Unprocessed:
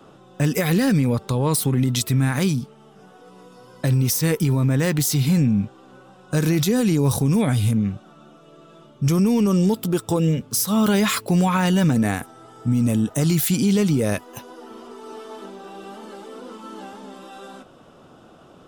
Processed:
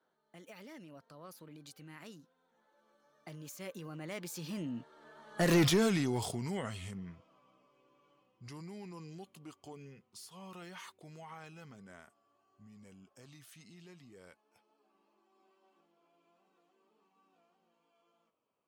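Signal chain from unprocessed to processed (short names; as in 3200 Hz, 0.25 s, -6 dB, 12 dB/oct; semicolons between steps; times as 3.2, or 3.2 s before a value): Doppler pass-by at 5.6, 51 m/s, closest 7.3 m; overdrive pedal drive 18 dB, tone 3400 Hz, clips at -11.5 dBFS; gain -6.5 dB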